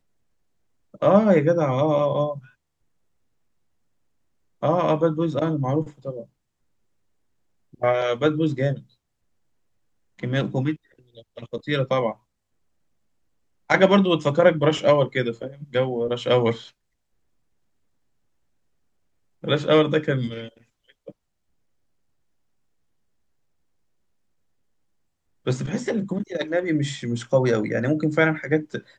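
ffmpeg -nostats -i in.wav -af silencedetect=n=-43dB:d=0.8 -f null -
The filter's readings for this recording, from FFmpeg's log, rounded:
silence_start: 0.00
silence_end: 0.94 | silence_duration: 0.94
silence_start: 2.47
silence_end: 4.62 | silence_duration: 2.15
silence_start: 6.24
silence_end: 7.74 | silence_duration: 1.50
silence_start: 8.82
silence_end: 10.19 | silence_duration: 1.37
silence_start: 12.14
silence_end: 13.70 | silence_duration: 1.56
silence_start: 16.69
silence_end: 19.43 | silence_duration: 2.74
silence_start: 21.11
silence_end: 25.46 | silence_duration: 4.35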